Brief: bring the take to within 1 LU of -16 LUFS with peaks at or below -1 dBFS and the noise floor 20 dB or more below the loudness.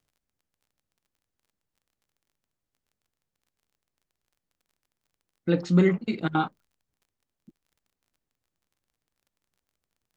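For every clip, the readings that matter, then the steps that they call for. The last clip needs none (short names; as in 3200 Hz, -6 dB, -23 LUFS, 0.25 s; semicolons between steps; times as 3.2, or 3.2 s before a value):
ticks 24/s; loudness -25.5 LUFS; peak -9.0 dBFS; loudness target -16.0 LUFS
-> de-click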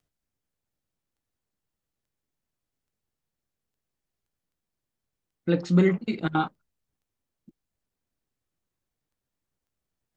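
ticks 0.20/s; loudness -25.5 LUFS; peak -9.0 dBFS; loudness target -16.0 LUFS
-> gain +9.5 dB; limiter -1 dBFS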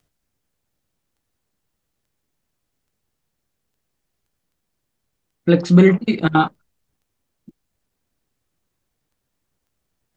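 loudness -16.0 LUFS; peak -1.0 dBFS; noise floor -77 dBFS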